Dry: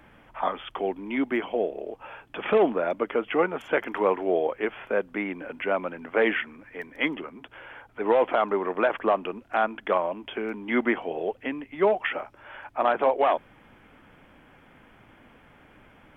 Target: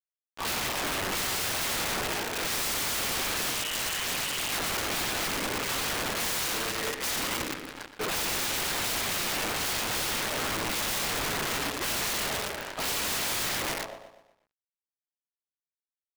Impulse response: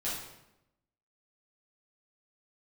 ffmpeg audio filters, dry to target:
-filter_complex "[0:a]asplit=3[link_01][link_02][link_03];[link_01]afade=type=out:start_time=1.14:duration=0.02[link_04];[link_02]acontrast=21,afade=type=in:start_time=1.14:duration=0.02,afade=type=out:start_time=2.94:duration=0.02[link_05];[link_03]afade=type=in:start_time=2.94:duration=0.02[link_06];[link_04][link_05][link_06]amix=inputs=3:normalize=0[link_07];[1:a]atrim=start_sample=2205,asetrate=28665,aresample=44100[link_08];[link_07][link_08]afir=irnorm=-1:irlink=0,aeval=exprs='(mod(4.47*val(0)+1,2)-1)/4.47':channel_layout=same,acrusher=bits=4:mix=0:aa=0.000001,asettb=1/sr,asplit=3[link_09][link_10][link_11];[link_09]atrim=end=3.504[link_12];[link_10]atrim=start=3.5:end=4.53,asetpts=PTS-STARTPTS,afade=type=in:duration=0.004:curve=qsin,afade=type=out:start_time=1.026:duration=0.004:curve=qsin,lowpass=frequency=2900:width_type=q:width=0.5098,lowpass=frequency=2900:width_type=q:width=0.6013,lowpass=frequency=2900:width_type=q:width=0.9,lowpass=frequency=2900:width_type=q:width=2.563,afreqshift=-3400[link_13];[link_11]atrim=start=4.526[link_14];[link_12][link_13]acrossfade=duration=0.004:curve1=hsin:curve2=qsin[link_15];[link_15][link_14]acrossfade=duration=0.004:curve1=qsin:curve2=hsin,alimiter=limit=-16.5dB:level=0:latency=1:release=72,aemphasis=mode=reproduction:type=cd,aecho=1:1:122|244|366|488|610:0.299|0.134|0.0605|0.0272|0.0122,aeval=exprs='(mod(12.6*val(0)+1,2)-1)/12.6':channel_layout=same,volume=-3.5dB"

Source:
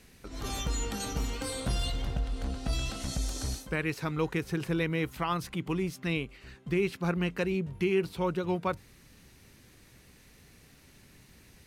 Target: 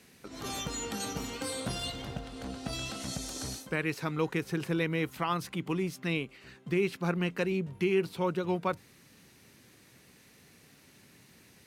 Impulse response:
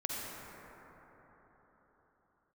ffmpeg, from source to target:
-af "highpass=130"

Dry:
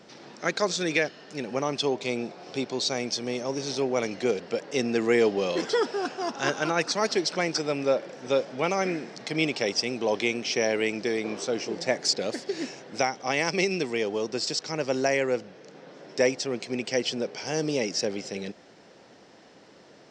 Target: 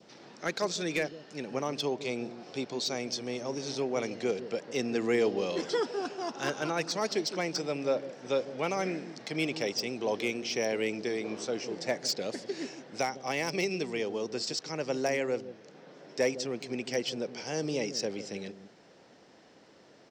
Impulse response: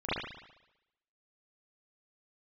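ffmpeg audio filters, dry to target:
-filter_complex "[0:a]adynamicequalizer=threshold=0.00891:dfrequency=1600:dqfactor=1.8:tfrequency=1600:tqfactor=1.8:attack=5:release=100:ratio=0.375:range=1.5:mode=cutabove:tftype=bell,acrossover=split=520[link_01][link_02];[link_01]aecho=1:1:157:0.355[link_03];[link_02]volume=19.5dB,asoftclip=hard,volume=-19.5dB[link_04];[link_03][link_04]amix=inputs=2:normalize=0,volume=-5dB"

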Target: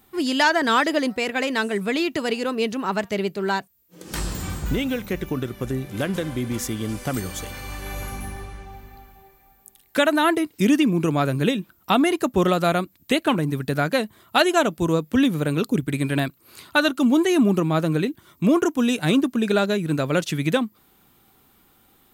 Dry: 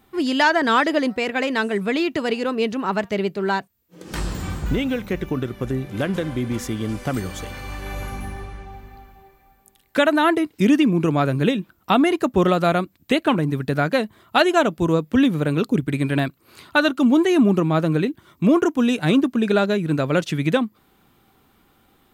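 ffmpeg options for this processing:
ffmpeg -i in.wav -af "highshelf=frequency=5700:gain=10.5,volume=-2dB" out.wav

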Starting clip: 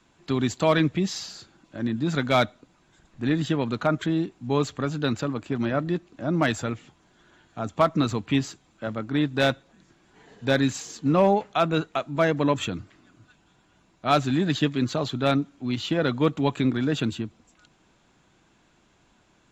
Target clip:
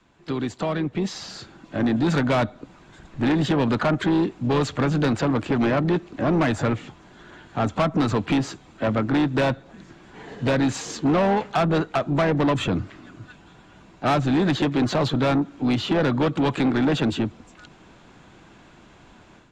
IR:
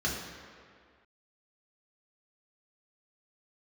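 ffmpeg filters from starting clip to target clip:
-filter_complex "[0:a]lowpass=frequency=3100:poles=1,acrossover=split=290|1400[link_01][link_02][link_03];[link_01]acompressor=threshold=-32dB:ratio=4[link_04];[link_02]acompressor=threshold=-29dB:ratio=4[link_05];[link_03]acompressor=threshold=-42dB:ratio=4[link_06];[link_04][link_05][link_06]amix=inputs=3:normalize=0,asplit=2[link_07][link_08];[link_08]asetrate=52444,aresample=44100,atempo=0.840896,volume=-13dB[link_09];[link_07][link_09]amix=inputs=2:normalize=0,dynaudnorm=framelen=880:gausssize=3:maxgain=10.5dB,asoftclip=type=tanh:threshold=-18.5dB,volume=2.5dB"

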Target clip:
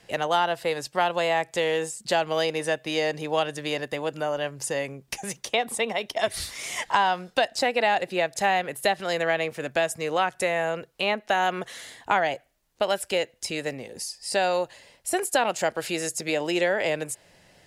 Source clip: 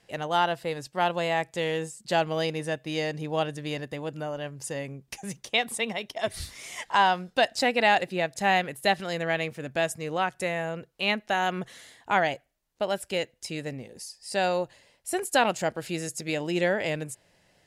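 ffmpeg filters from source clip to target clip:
ffmpeg -i in.wav -filter_complex "[0:a]acrossover=split=360|1200[link_01][link_02][link_03];[link_01]acompressor=threshold=-49dB:ratio=4[link_04];[link_02]acompressor=threshold=-30dB:ratio=4[link_05];[link_03]acompressor=threshold=-35dB:ratio=4[link_06];[link_04][link_05][link_06]amix=inputs=3:normalize=0,volume=7.5dB" out.wav

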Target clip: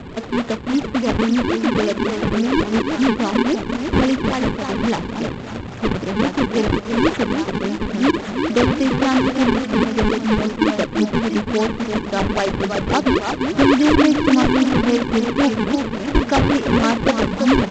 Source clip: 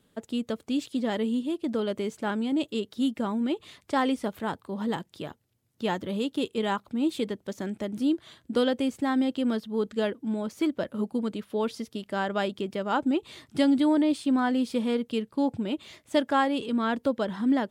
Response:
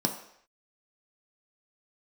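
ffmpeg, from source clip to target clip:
-af "aeval=exprs='val(0)+0.5*0.0158*sgn(val(0))':channel_layout=same,bandreject=frequency=50:width_type=h:width=6,bandreject=frequency=100:width_type=h:width=6,bandreject=frequency=150:width_type=h:width=6,bandreject=frequency=200:width_type=h:width=6,aecho=1:1:341|682|1023|1364|1705|2046:0.501|0.256|0.13|0.0665|0.0339|0.0173,acrusher=samples=39:mix=1:aa=0.000001:lfo=1:lforange=62.4:lforate=3.6,volume=8dB" -ar 16000 -c:a g722

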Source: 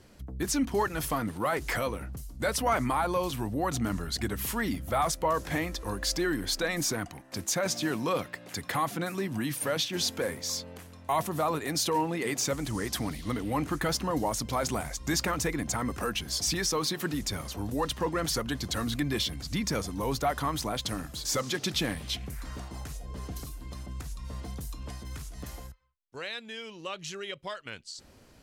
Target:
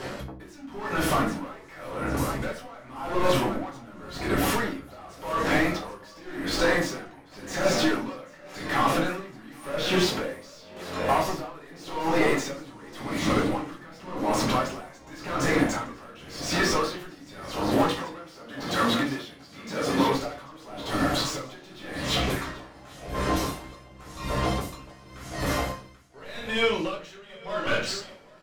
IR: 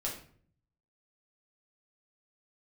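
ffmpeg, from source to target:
-filter_complex "[0:a]asplit=2[link_01][link_02];[link_02]highpass=frequency=720:poles=1,volume=26dB,asoftclip=type=tanh:threshold=-17dB[link_03];[link_01][link_03]amix=inputs=2:normalize=0,lowpass=frequency=1700:poles=1,volume=-6dB,asettb=1/sr,asplit=3[link_04][link_05][link_06];[link_04]atrim=end=17.704[link_07];[link_05]atrim=start=17.7:end=20.14,asetpts=PTS-STARTPTS,afade=type=in:duration=0.004:curve=qsin,afade=type=out:start_time=2.436:duration=0.004:curve=qsin,highpass=frequency=210:poles=1[link_08];[link_06]atrim=start=20.136[link_09];[link_07][link_08]acrossfade=duration=0.004:curve1=hsin:curve2=qsin[link_10];[link_10][link_09]acrossfade=duration=0.004:curve1=qsin:curve2=hsin,acompressor=threshold=-36dB:ratio=2.5,aecho=1:1:787|1574|2361|3148:0.355|0.11|0.0341|0.0106[link_11];[1:a]atrim=start_sample=2205[link_12];[link_11][link_12]afir=irnorm=-1:irlink=0,aeval=exprs='val(0)*pow(10,-24*(0.5-0.5*cos(2*PI*0.9*n/s))/20)':channel_layout=same,volume=9dB"

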